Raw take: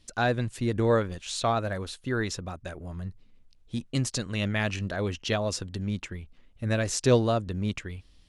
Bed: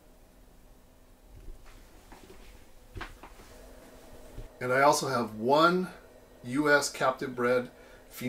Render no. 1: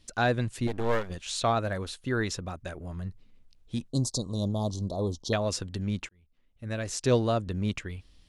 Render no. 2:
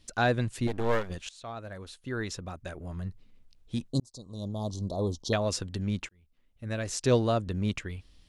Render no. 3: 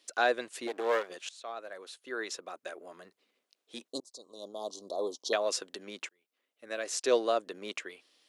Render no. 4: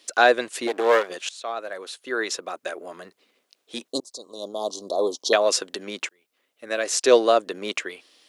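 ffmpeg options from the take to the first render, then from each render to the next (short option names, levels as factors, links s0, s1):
-filter_complex "[0:a]asettb=1/sr,asplit=3[s0][s1][s2];[s0]atrim=end=0.674[s3];[s1]atrim=start=0.67:end=1.1,asetpts=PTS-STARTPTS,afade=t=in:d=0.004:c=qsin,afade=t=out:st=0.426:d=0.004:c=qsin,aeval=exprs='max(val(0),0)':c=same[s4];[s2]atrim=start=1.096[s5];[s3][s4]acrossfade=d=0.004:c1=hsin:c2=qsin[s6];[s6][s5]acrossfade=d=0.004:c1=qsin:c2=hsin,asettb=1/sr,asplit=3[s7][s8][s9];[s7]atrim=end=3.884[s10];[s8]atrim=start=3.88:end=5.33,asetpts=PTS-STARTPTS,afade=t=in:d=0.004:c=qsin,afade=t=out:st=1.446:d=0.004:c=qsin,asuperstop=centerf=2000:order=12:qfactor=0.78[s11];[s9]atrim=start=5.326[s12];[s10][s11]acrossfade=d=0.004:c1=hsin:c2=qsin[s13];[s13][s12]acrossfade=d=0.004:c1=qsin:c2=hsin,asplit=2[s14][s15];[s14]atrim=end=6.09,asetpts=PTS-STARTPTS,afade=t=out:st=6.086:d=0.004:c=hsin[s16];[s15]atrim=start=6.09,asetpts=PTS-STARTPTS,afade=t=in:d=1.41[s17];[s16][s17]concat=n=2:v=0:a=1"
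-filter_complex "[0:a]asplit=3[s0][s1][s2];[s0]atrim=end=1.29,asetpts=PTS-STARTPTS,afade=t=out:st=1.286:d=0.004:c=hsin:silence=0.0749894[s3];[s1]atrim=start=1.29:end=4,asetpts=PTS-STARTPTS,afade=t=in:d=1.7:silence=0.0749894,afade=t=out:st=2.706:d=0.004:c=hsin[s4];[s2]atrim=start=4,asetpts=PTS-STARTPTS,afade=t=in:d=0.98[s5];[s3][s4][s5]concat=n=3:v=0:a=1"
-af "highpass=f=370:w=0.5412,highpass=f=370:w=1.3066,bandreject=f=890:w=12"
-af "volume=3.35"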